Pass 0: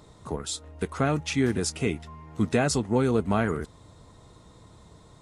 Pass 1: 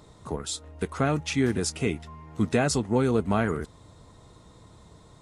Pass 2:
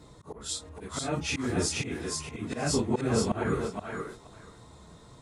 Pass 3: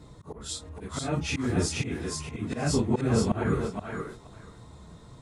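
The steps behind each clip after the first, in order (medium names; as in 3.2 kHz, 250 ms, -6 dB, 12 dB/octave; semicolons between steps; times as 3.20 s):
no audible change
phase randomisation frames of 100 ms; slow attack 209 ms; thinning echo 476 ms, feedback 16%, high-pass 410 Hz, level -3 dB
tone controls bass +5 dB, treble -2 dB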